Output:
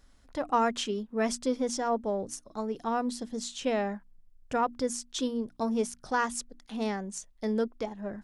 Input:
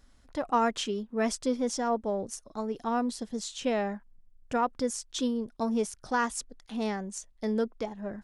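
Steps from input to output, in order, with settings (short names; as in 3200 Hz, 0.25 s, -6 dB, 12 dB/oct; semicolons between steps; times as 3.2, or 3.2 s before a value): notches 60/120/180/240/300 Hz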